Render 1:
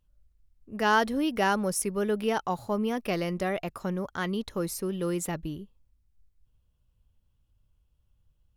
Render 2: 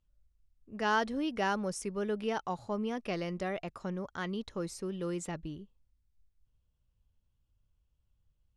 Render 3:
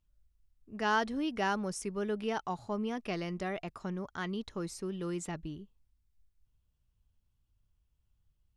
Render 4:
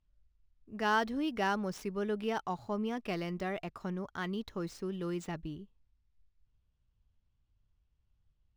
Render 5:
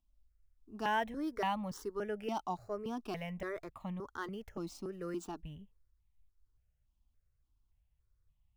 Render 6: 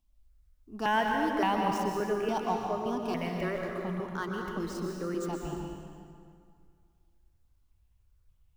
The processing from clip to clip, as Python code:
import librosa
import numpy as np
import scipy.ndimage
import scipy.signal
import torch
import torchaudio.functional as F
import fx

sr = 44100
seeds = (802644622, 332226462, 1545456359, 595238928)

y1 = scipy.signal.sosfilt(scipy.signal.butter(4, 8400.0, 'lowpass', fs=sr, output='sos'), x)
y1 = y1 * librosa.db_to_amplitude(-6.0)
y2 = fx.peak_eq(y1, sr, hz=530.0, db=-7.0, octaves=0.21)
y3 = scipy.ndimage.median_filter(y2, 5, mode='constant')
y4 = fx.phaser_held(y3, sr, hz=3.5, low_hz=460.0, high_hz=1500.0)
y5 = fx.rev_plate(y4, sr, seeds[0], rt60_s=2.2, hf_ratio=0.75, predelay_ms=110, drr_db=0.5)
y5 = y5 * librosa.db_to_amplitude(5.0)